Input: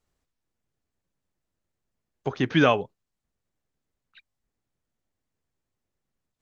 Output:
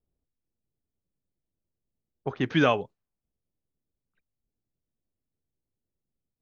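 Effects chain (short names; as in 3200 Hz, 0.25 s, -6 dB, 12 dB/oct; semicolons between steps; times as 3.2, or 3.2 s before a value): low-pass opened by the level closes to 490 Hz, open at -21.5 dBFS; gain -2.5 dB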